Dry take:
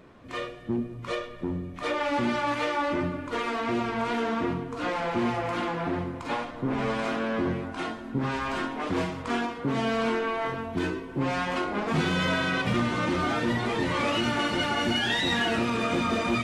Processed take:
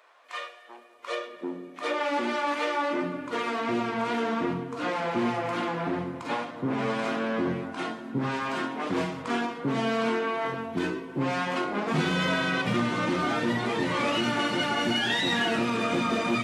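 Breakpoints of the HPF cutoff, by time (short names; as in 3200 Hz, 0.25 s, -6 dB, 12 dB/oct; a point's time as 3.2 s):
HPF 24 dB/oct
0.89 s 670 Hz
1.36 s 270 Hz
2.89 s 270 Hz
3.35 s 120 Hz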